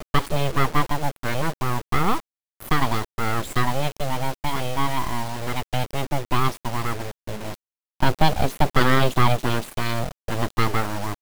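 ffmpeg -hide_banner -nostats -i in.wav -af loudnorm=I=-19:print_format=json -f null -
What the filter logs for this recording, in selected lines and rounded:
"input_i" : "-24.4",
"input_tp" : "-3.1",
"input_lra" : "3.6",
"input_thresh" : "-34.6",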